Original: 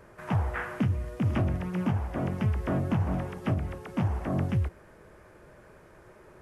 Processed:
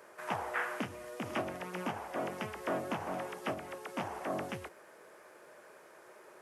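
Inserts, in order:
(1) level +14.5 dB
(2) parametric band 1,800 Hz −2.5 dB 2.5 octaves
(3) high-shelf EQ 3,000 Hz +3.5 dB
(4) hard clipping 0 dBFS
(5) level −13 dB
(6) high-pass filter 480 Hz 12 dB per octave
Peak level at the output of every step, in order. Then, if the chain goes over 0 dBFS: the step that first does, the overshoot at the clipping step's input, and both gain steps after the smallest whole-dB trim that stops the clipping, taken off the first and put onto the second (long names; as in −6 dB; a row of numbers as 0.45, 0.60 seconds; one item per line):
−3.5, −3.5, −3.5, −3.5, −16.5, −21.0 dBFS
no step passes full scale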